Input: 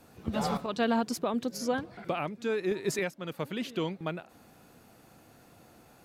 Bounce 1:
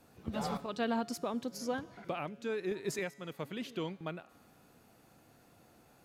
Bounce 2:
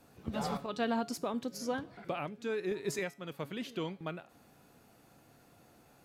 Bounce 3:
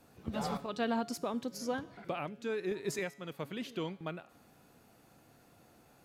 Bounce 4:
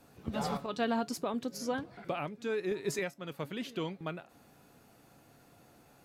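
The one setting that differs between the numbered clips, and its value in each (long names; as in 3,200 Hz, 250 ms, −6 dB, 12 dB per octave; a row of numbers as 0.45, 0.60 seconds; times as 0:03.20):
tuned comb filter, decay: 1.8, 0.38, 0.8, 0.15 seconds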